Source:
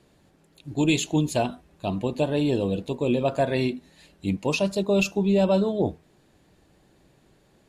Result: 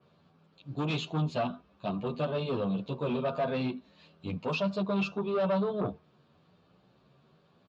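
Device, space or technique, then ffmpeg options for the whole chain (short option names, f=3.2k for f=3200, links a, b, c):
barber-pole flanger into a guitar amplifier: -filter_complex "[0:a]asplit=2[a][b];[b]adelay=10.4,afreqshift=0.96[c];[a][c]amix=inputs=2:normalize=1,asoftclip=type=tanh:threshold=-24dB,highpass=110,equalizer=f=160:t=q:w=4:g=4,equalizer=f=320:t=q:w=4:g=-8,equalizer=f=1.2k:t=q:w=4:g=8,equalizer=f=1.9k:t=q:w=4:g=-9,lowpass=f=4.5k:w=0.5412,lowpass=f=4.5k:w=1.3066,bandreject=f=820:w=21,adynamicequalizer=threshold=0.00398:dfrequency=3500:dqfactor=0.7:tfrequency=3500:tqfactor=0.7:attack=5:release=100:ratio=0.375:range=2:mode=cutabove:tftype=highshelf"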